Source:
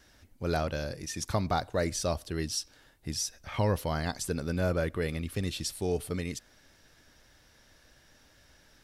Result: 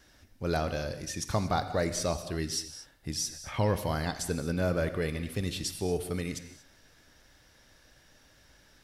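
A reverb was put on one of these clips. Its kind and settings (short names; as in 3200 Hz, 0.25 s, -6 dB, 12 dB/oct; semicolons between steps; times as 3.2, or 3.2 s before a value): non-linear reverb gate 0.26 s flat, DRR 9.5 dB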